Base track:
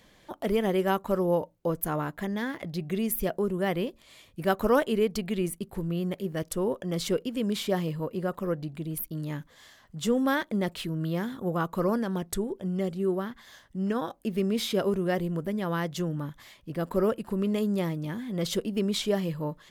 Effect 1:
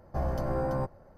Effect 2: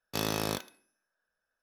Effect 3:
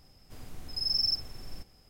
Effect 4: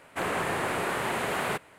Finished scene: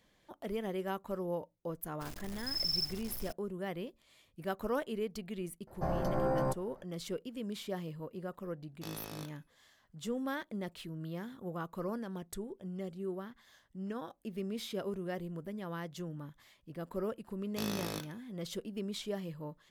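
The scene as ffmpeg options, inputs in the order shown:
ffmpeg -i bed.wav -i cue0.wav -i cue1.wav -i cue2.wav -filter_complex "[2:a]asplit=2[link_01][link_02];[0:a]volume=-11.5dB[link_03];[3:a]acrusher=bits=6:mix=0:aa=0.000001[link_04];[1:a]equalizer=frequency=61:width_type=o:width=1.2:gain=-12.5[link_05];[link_02]equalizer=frequency=880:width=1.5:gain=-2.5[link_06];[link_04]atrim=end=1.89,asetpts=PTS-STARTPTS,volume=-5.5dB,afade=type=in:duration=0.004:curve=hsin,afade=type=out:start_time=1.886:duration=0.004:curve=hsin,adelay=1700[link_07];[link_05]atrim=end=1.17,asetpts=PTS-STARTPTS,volume=-0.5dB,afade=type=in:duration=0.004:curve=hsin,afade=type=out:start_time=1.166:duration=0.004:curve=hsin,adelay=5670[link_08];[link_01]atrim=end=1.62,asetpts=PTS-STARTPTS,volume=-14dB,afade=type=in:duration=0.004:curve=hsin,afade=type=out:start_time=1.616:duration=0.004:curve=hsin,adelay=8680[link_09];[link_06]atrim=end=1.62,asetpts=PTS-STARTPTS,volume=-7dB,afade=type=in:duration=0.004:curve=hsin,afade=type=out:start_time=1.616:duration=0.004:curve=hsin,adelay=17430[link_10];[link_03][link_07][link_08][link_09][link_10]amix=inputs=5:normalize=0" out.wav

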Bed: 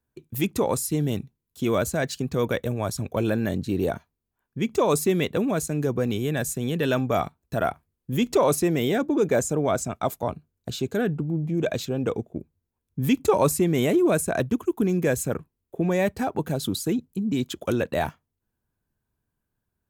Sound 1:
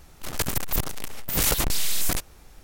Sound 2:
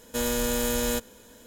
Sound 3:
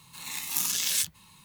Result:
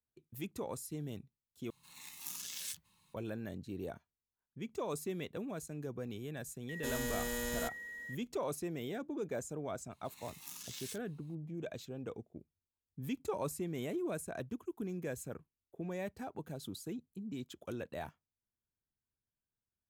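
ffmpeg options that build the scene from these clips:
ffmpeg -i bed.wav -i cue0.wav -i cue1.wav -i cue2.wav -filter_complex "[3:a]asplit=2[link_01][link_02];[0:a]volume=-17.5dB[link_03];[2:a]aeval=exprs='val(0)+0.0251*sin(2*PI*1900*n/s)':channel_layout=same[link_04];[link_02]highshelf=frequency=4800:gain=-3[link_05];[link_03]asplit=2[link_06][link_07];[link_06]atrim=end=1.704[link_08];[link_01]atrim=end=1.44,asetpts=PTS-STARTPTS,volume=-16dB[link_09];[link_07]atrim=start=3.136[link_10];[link_04]atrim=end=1.46,asetpts=PTS-STARTPTS,volume=-12dB,afade=type=in:duration=0.004:curve=hsin,afade=type=out:start_time=1.456:duration=0.004:curve=hsin,adelay=6690[link_11];[link_05]atrim=end=1.44,asetpts=PTS-STARTPTS,volume=-18dB,afade=type=in:duration=0.004:curve=hsin,afade=type=out:start_time=1.436:duration=0.004:curve=hsin,adelay=9910[link_12];[link_08][link_09]acrossfade=duration=0.004:curve1=hsin:curve2=hsin[link_13];[link_13][link_10]acrossfade=duration=0.004:curve1=hsin:curve2=hsin[link_14];[link_14][link_11][link_12]amix=inputs=3:normalize=0" out.wav

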